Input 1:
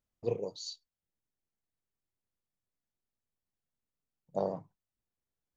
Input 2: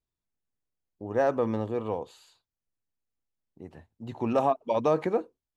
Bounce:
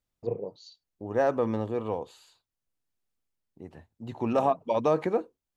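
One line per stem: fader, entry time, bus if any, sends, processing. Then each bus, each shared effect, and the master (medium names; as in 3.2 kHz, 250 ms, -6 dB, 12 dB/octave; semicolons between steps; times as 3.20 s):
+1.5 dB, 0.00 s, no send, low-pass that closes with the level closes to 1.3 kHz, closed at -34 dBFS; auto duck -10 dB, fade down 0.45 s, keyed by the second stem
0.0 dB, 0.00 s, no send, none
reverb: none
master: none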